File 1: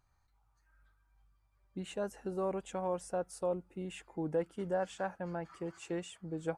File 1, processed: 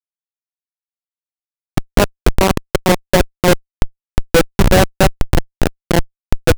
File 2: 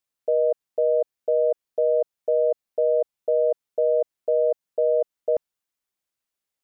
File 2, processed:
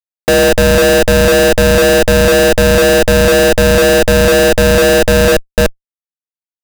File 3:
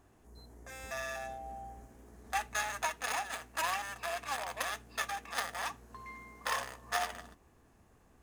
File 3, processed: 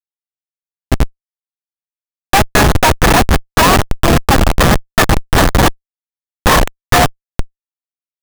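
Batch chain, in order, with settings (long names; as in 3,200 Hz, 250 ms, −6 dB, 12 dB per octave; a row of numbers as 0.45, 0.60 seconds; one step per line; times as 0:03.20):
harmonic and percussive parts rebalanced percussive +4 dB
echo through a band-pass that steps 147 ms, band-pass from 200 Hz, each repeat 1.4 octaves, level −5 dB
comparator with hysteresis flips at −29.5 dBFS
normalise the peak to −2 dBFS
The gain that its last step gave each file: +29.5, +15.0, +29.5 decibels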